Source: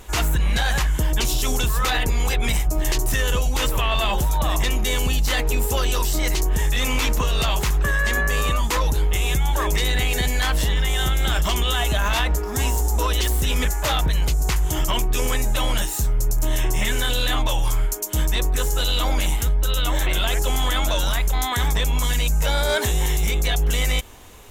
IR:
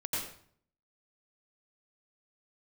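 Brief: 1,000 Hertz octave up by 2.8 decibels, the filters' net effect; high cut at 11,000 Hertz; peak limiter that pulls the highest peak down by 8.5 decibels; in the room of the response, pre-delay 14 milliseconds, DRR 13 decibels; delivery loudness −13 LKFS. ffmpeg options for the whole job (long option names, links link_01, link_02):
-filter_complex "[0:a]lowpass=11000,equalizer=frequency=1000:width_type=o:gain=3.5,alimiter=limit=-20dB:level=0:latency=1,asplit=2[link_01][link_02];[1:a]atrim=start_sample=2205,adelay=14[link_03];[link_02][link_03]afir=irnorm=-1:irlink=0,volume=-17.5dB[link_04];[link_01][link_04]amix=inputs=2:normalize=0,volume=14.5dB"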